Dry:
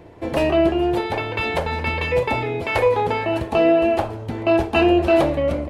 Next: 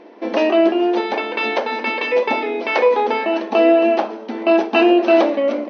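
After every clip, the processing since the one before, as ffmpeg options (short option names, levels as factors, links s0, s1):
-af "afftfilt=real='re*between(b*sr/4096,200,6300)':imag='im*between(b*sr/4096,200,6300)':win_size=4096:overlap=0.75,volume=1.41"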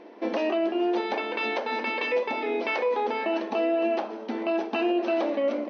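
-af "alimiter=limit=0.224:level=0:latency=1:release=219,volume=0.596"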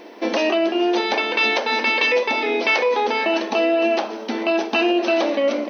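-af "crystalizer=i=4.5:c=0,volume=1.88"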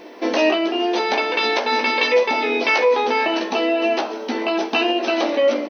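-filter_complex "[0:a]asplit=2[s0][s1];[s1]adelay=16,volume=0.596[s2];[s0][s2]amix=inputs=2:normalize=0"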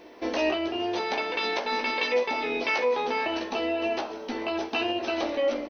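-af "tremolo=f=250:d=0.261,volume=0.422"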